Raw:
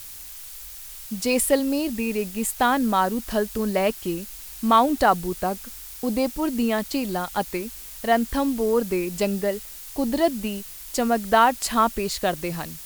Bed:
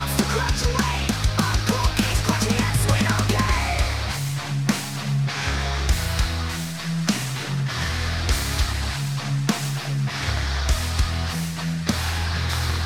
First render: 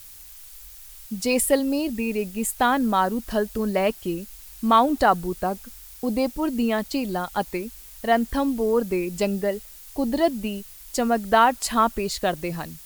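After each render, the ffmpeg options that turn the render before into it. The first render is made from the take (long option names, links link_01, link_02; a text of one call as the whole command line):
ffmpeg -i in.wav -af "afftdn=noise_reduction=6:noise_floor=-40" out.wav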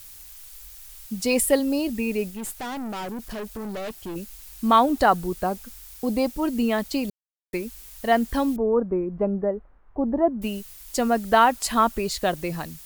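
ffmpeg -i in.wav -filter_complex "[0:a]asettb=1/sr,asplit=3[link_01][link_02][link_03];[link_01]atrim=end=2.304[link_04];[link_02]atrim=start=2.3:end=4.16,asetpts=PTS-STARTPTS,afade=type=in:duration=0.004:curve=qsin,afade=type=out:start_time=1.856:duration=0.004:curve=qsin,aeval=exprs='(tanh(31.6*val(0)+0.35)-tanh(0.35))/31.6':channel_layout=same[link_05];[link_03]atrim=start=4.156[link_06];[link_04][link_05]acrossfade=duration=0.004:curve1=hsin:curve2=qsin[link_07];[link_07][link_06]acrossfade=duration=0.004:curve1=qsin:curve2=hsin,asettb=1/sr,asplit=3[link_08][link_09][link_10];[link_08]atrim=end=8.564[link_11];[link_09]atrim=start=8.56:end=10.42,asetpts=PTS-STARTPTS,afade=type=in:duration=0.004:curve=qsin,afade=type=out:start_time=1.856:duration=0.004:curve=qsin,lowpass=frequency=1300:width=0.5412,lowpass=frequency=1300:width=1.3066[link_12];[link_10]atrim=start=10.416[link_13];[link_11][link_12]acrossfade=duration=0.004:curve1=hsin:curve2=qsin[link_14];[link_14][link_13]acrossfade=duration=0.004:curve1=qsin:curve2=hsin,asplit=3[link_15][link_16][link_17];[link_15]atrim=end=7.1,asetpts=PTS-STARTPTS,afade=type=out:start_time=7.096:duration=0.004:curve=hsin[link_18];[link_16]atrim=start=7.1:end=7.53,asetpts=PTS-STARTPTS,volume=0[link_19];[link_17]atrim=start=7.53,asetpts=PTS-STARTPTS,afade=type=in:duration=0.004:curve=hsin[link_20];[link_18][link_19][link_20]concat=n=3:v=0:a=1" out.wav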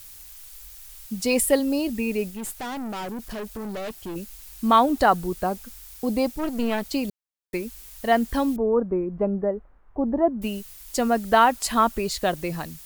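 ffmpeg -i in.wav -filter_complex "[0:a]asettb=1/sr,asplit=3[link_01][link_02][link_03];[link_01]atrim=end=6.344[link_04];[link_02]atrim=start=6.34:end=6.86,asetpts=PTS-STARTPTS,afade=type=in:duration=0.004:curve=qsin,afade=type=out:start_time=0.516:duration=0.004:curve=qsin,aeval=exprs='clip(val(0),-1,0.0237)':channel_layout=same[link_05];[link_03]atrim=start=6.856[link_06];[link_04][link_05]acrossfade=duration=0.004:curve1=hsin:curve2=qsin[link_07];[link_07][link_06]acrossfade=duration=0.004:curve1=qsin:curve2=hsin" out.wav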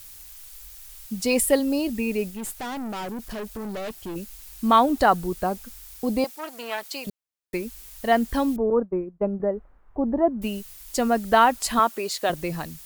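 ffmpeg -i in.wav -filter_complex "[0:a]asettb=1/sr,asplit=3[link_01][link_02][link_03];[link_01]atrim=end=6.244[link_04];[link_02]atrim=start=6.24:end=7.07,asetpts=PTS-STARTPTS,afade=type=in:duration=0.004:curve=qsin,afade=type=out:start_time=0.826:duration=0.004:curve=qsin,highpass=710[link_05];[link_03]atrim=start=7.066[link_06];[link_04][link_05]acrossfade=duration=0.004:curve1=hsin:curve2=qsin[link_07];[link_07][link_06]acrossfade=duration=0.004:curve1=qsin:curve2=hsin,asettb=1/sr,asplit=3[link_08][link_09][link_10];[link_08]atrim=end=8.704[link_11];[link_09]atrim=start=8.7:end=9.4,asetpts=PTS-STARTPTS,afade=type=in:duration=0.004:curve=qsin,afade=type=out:start_time=0.696:duration=0.004:curve=qsin,agate=range=-33dB:threshold=-22dB:ratio=3:release=100:detection=peak[link_12];[link_10]atrim=start=9.396[link_13];[link_11][link_12]acrossfade=duration=0.004:curve1=hsin:curve2=qsin[link_14];[link_14][link_13]acrossfade=duration=0.004:curve1=qsin:curve2=hsin,asettb=1/sr,asplit=3[link_15][link_16][link_17];[link_15]atrim=end=11.794[link_18];[link_16]atrim=start=11.79:end=12.3,asetpts=PTS-STARTPTS,afade=type=in:duration=0.004:curve=qsin,afade=type=out:start_time=0.506:duration=0.004:curve=qsin,highpass=330[link_19];[link_17]atrim=start=12.296[link_20];[link_18][link_19]acrossfade=duration=0.004:curve1=hsin:curve2=qsin[link_21];[link_21][link_20]acrossfade=duration=0.004:curve1=qsin:curve2=hsin" out.wav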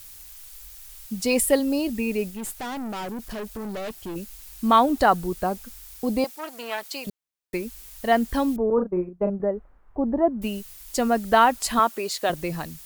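ffmpeg -i in.wav -filter_complex "[0:a]asettb=1/sr,asplit=3[link_01][link_02][link_03];[link_01]atrim=end=8.744[link_04];[link_02]atrim=start=8.74:end=9.3,asetpts=PTS-STARTPTS,afade=type=in:duration=0.004:curve=qsin,afade=type=out:start_time=0.556:duration=0.004:curve=qsin,asplit=2[link_05][link_06];[link_06]adelay=39,volume=-6.5dB[link_07];[link_05][link_07]amix=inputs=2:normalize=0,atrim=end_sample=24696[link_08];[link_03]atrim=start=9.296[link_09];[link_04][link_08]acrossfade=duration=0.004:curve1=hsin:curve2=qsin[link_10];[link_10][link_09]acrossfade=duration=0.004:curve1=qsin:curve2=hsin" out.wav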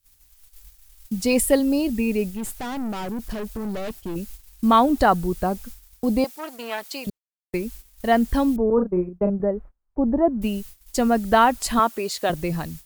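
ffmpeg -i in.wav -af "agate=range=-29dB:threshold=-41dB:ratio=16:detection=peak,lowshelf=frequency=240:gain=8" out.wav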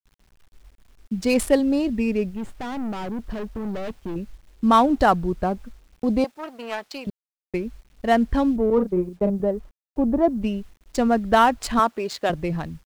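ffmpeg -i in.wav -af "adynamicsmooth=sensitivity=4:basefreq=2100,acrusher=bits=9:mix=0:aa=0.000001" out.wav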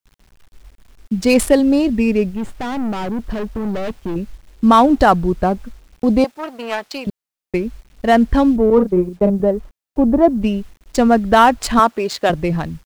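ffmpeg -i in.wav -af "volume=7dB,alimiter=limit=-1dB:level=0:latency=1" out.wav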